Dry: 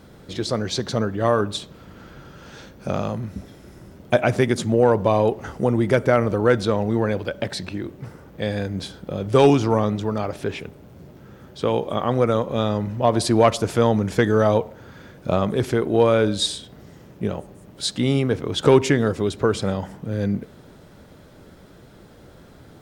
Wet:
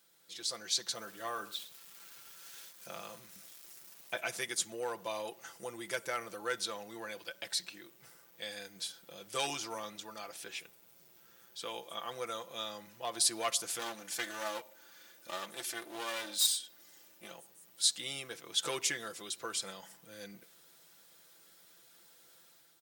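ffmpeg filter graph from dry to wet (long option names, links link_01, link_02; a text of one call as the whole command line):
ffmpeg -i in.wav -filter_complex "[0:a]asettb=1/sr,asplit=3[link_01][link_02][link_03];[link_01]atrim=end=0.954[link_04];[link_02]atrim=start=0.95:end=4.2,asetpts=PTS-STARTPTS,afade=type=in:duration=0.004:curve=qsin,afade=type=out:start_time=3.246:duration=0.004:curve=qsin,acrossover=split=3500[link_05][link_06];[link_06]acompressor=threshold=-52dB:ratio=4:attack=1:release=60[link_07];[link_05][link_07]amix=inputs=2:normalize=0,aeval=exprs='val(0)*gte(abs(val(0)),0.00708)':channel_layout=same,aecho=1:1:105:0.15,atrim=end_sample=143325[link_08];[link_03]atrim=start=4.196[link_09];[link_04][link_08]acrossfade=duration=0.004:curve1=hsin:curve2=qsin[link_10];[link_10][link_09]acrossfade=duration=0.004:curve1=qsin:curve2=hsin,asettb=1/sr,asplit=3[link_11][link_12][link_13];[link_11]atrim=end=13.794[link_14];[link_12]atrim=start=13.79:end=17.31,asetpts=PTS-STARTPTS,afade=type=in:duration=0.004:curve=qsin,afade=type=out:start_time=3.516:duration=0.004:curve=qsin,highpass=120,aecho=1:1:3.4:0.52,atrim=end_sample=155232,aeval=exprs='clip(val(0),-1,0.0447)':channel_layout=same[link_15];[link_13]atrim=start=17.306[link_16];[link_14][link_15]acrossfade=duration=0.004:curve1=hsin:curve2=qsin[link_17];[link_17][link_16]acrossfade=duration=0.004:curve1=qsin:curve2=hsin,aderivative,aecho=1:1:5.9:0.58,dynaudnorm=framelen=160:gausssize=5:maxgain=7dB,volume=-8dB" out.wav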